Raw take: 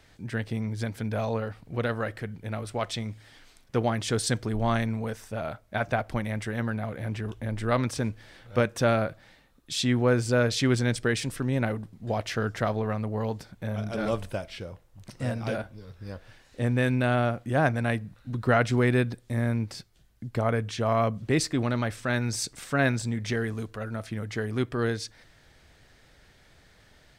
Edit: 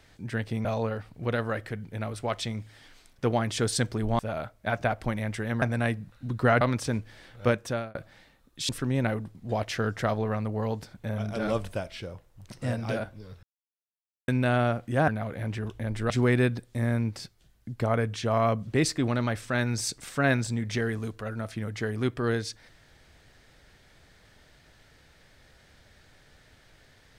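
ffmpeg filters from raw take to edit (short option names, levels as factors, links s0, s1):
-filter_complex "[0:a]asplit=11[s0][s1][s2][s3][s4][s5][s6][s7][s8][s9][s10];[s0]atrim=end=0.652[s11];[s1]atrim=start=1.158:end=4.702[s12];[s2]atrim=start=5.268:end=6.702[s13];[s3]atrim=start=17.658:end=18.652[s14];[s4]atrim=start=7.718:end=9.06,asetpts=PTS-STARTPTS,afade=t=out:st=0.882:d=0.46[s15];[s5]atrim=start=9.06:end=9.802,asetpts=PTS-STARTPTS,afade=t=in:d=0.004:c=hsin[s16];[s6]atrim=start=11.268:end=16.01,asetpts=PTS-STARTPTS,afade=t=out:st=4.738:d=0.004:c=hsin[s17];[s7]atrim=start=16.01:end=16.86,asetpts=PTS-STARTPTS,volume=0[s18];[s8]atrim=start=16.86:end=17.662,asetpts=PTS-STARTPTS,afade=t=in:d=0.004:c=hsin[s19];[s9]atrim=start=6.698:end=7.722[s20];[s10]atrim=start=18.648[s21];[s11][s12]acrossfade=d=0.004:c1=hsin:c2=hsin[s22];[s22][s13]acrossfade=d=0.004:c1=hsin:c2=hsin[s23];[s23][s14]acrossfade=d=0.004:c1=hsin:c2=hsin[s24];[s15][s16]concat=n=2:v=0:a=1[s25];[s24][s25]acrossfade=d=0.004:c1=hsin:c2=hsin[s26];[s17][s18][s19]concat=n=3:v=0:a=1[s27];[s26][s27]acrossfade=d=0.004:c1=hsin:c2=hsin[s28];[s28][s20]acrossfade=d=0.004:c1=hsin:c2=hsin[s29];[s29][s21]acrossfade=d=0.004:c1=hsin:c2=hsin"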